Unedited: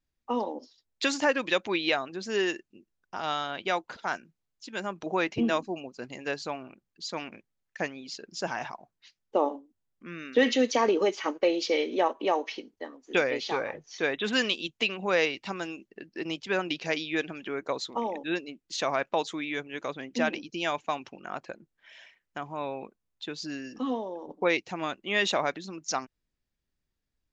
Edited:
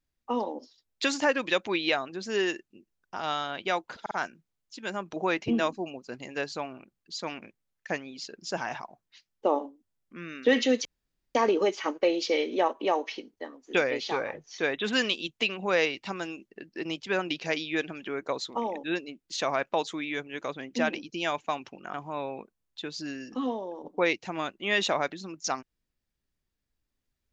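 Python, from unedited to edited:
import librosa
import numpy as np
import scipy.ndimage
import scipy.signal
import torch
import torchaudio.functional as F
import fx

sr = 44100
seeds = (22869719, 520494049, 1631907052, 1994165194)

y = fx.edit(x, sr, fx.stutter(start_s=4.01, slice_s=0.05, count=3),
    fx.insert_room_tone(at_s=10.75, length_s=0.5),
    fx.cut(start_s=21.34, length_s=1.04), tone=tone)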